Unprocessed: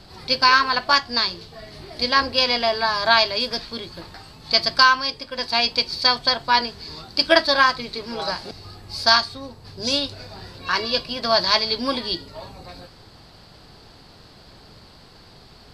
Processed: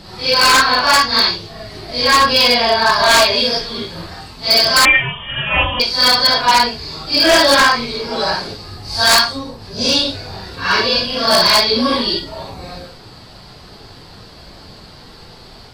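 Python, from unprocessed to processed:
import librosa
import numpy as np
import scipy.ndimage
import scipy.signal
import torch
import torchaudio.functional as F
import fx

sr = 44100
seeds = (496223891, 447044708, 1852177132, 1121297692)

y = fx.phase_scramble(x, sr, seeds[0], window_ms=200)
y = 10.0 ** (-13.0 / 20.0) * (np.abs((y / 10.0 ** (-13.0 / 20.0) + 3.0) % 4.0 - 2.0) - 1.0)
y = fx.freq_invert(y, sr, carrier_hz=3400, at=(4.85, 5.8))
y = y * librosa.db_to_amplitude(8.5)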